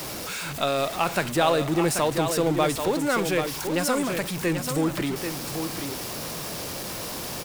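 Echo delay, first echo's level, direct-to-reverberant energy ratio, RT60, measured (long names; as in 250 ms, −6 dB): 786 ms, −7.0 dB, no reverb audible, no reverb audible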